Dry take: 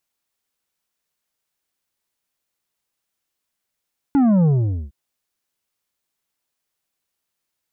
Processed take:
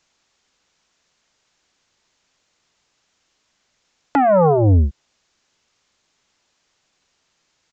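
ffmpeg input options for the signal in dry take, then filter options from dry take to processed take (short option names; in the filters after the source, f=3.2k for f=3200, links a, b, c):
-f lavfi -i "aevalsrc='0.224*clip((0.76-t)/0.46,0,1)*tanh(2.37*sin(2*PI*290*0.76/log(65/290)*(exp(log(65/290)*t/0.76)-1)))/tanh(2.37)':d=0.76:s=44100"
-filter_complex "[0:a]acrossover=split=250[a][b];[b]acompressor=threshold=-37dB:ratio=2[c];[a][c]amix=inputs=2:normalize=0,aresample=16000,aeval=exprs='0.316*sin(PI/2*3.98*val(0)/0.316)':c=same,aresample=44100"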